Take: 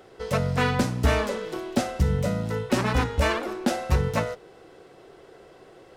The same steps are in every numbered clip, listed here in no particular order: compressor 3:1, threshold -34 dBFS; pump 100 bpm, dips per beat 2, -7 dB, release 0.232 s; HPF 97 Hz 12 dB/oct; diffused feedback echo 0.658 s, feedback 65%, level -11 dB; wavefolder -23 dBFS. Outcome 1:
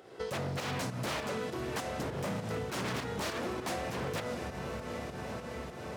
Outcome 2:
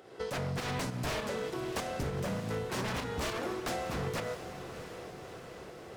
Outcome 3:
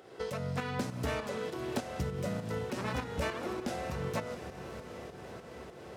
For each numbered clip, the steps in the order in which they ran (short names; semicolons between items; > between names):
diffused feedback echo > wavefolder > pump > compressor > HPF; HPF > wavefolder > pump > compressor > diffused feedback echo; HPF > compressor > wavefolder > diffused feedback echo > pump